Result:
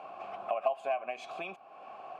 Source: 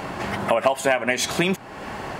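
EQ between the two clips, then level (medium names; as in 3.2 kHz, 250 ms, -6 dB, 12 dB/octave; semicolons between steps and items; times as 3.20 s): vowel filter a; -5.0 dB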